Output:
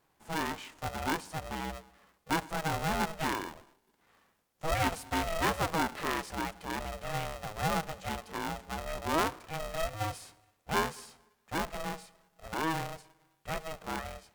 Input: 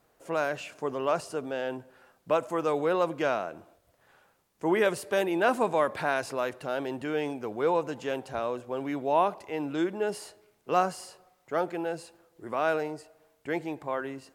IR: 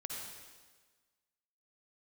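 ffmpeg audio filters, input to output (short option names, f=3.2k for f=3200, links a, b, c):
-filter_complex "[0:a]asplit=2[a][b];[1:a]atrim=start_sample=2205,afade=t=out:st=0.32:d=0.01,atrim=end_sample=14553[c];[b][c]afir=irnorm=-1:irlink=0,volume=-21dB[d];[a][d]amix=inputs=2:normalize=0,aeval=exprs='val(0)*sgn(sin(2*PI*320*n/s))':c=same,volume=-5.5dB"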